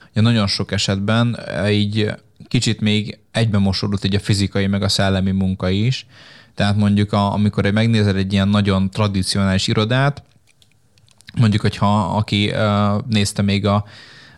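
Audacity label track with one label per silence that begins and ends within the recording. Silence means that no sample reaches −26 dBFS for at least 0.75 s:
10.190000	11.210000	silence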